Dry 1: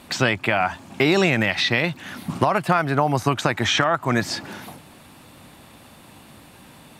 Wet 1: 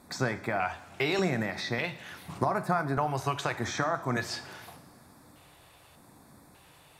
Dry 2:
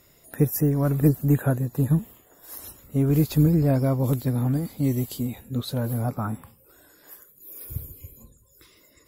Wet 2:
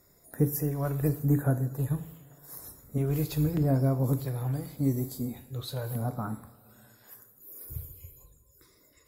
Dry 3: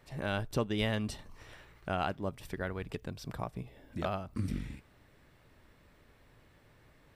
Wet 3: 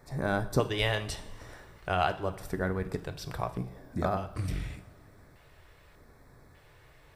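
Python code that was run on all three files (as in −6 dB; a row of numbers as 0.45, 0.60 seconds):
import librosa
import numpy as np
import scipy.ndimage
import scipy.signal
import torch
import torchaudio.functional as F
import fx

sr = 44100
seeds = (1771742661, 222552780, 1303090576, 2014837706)

y = fx.filter_lfo_notch(x, sr, shape='square', hz=0.84, low_hz=230.0, high_hz=2900.0, q=0.96)
y = fx.rev_double_slope(y, sr, seeds[0], early_s=0.58, late_s=3.1, knee_db=-18, drr_db=8.5)
y = librosa.util.normalize(y) * 10.0 ** (-12 / 20.0)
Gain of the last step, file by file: −9.0, −5.0, +5.5 decibels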